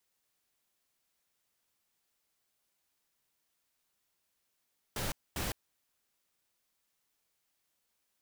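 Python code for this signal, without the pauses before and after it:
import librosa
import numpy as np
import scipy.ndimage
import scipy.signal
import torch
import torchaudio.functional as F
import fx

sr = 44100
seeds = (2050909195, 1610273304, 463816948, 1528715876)

y = fx.noise_burst(sr, seeds[0], colour='pink', on_s=0.16, off_s=0.24, bursts=2, level_db=-35.5)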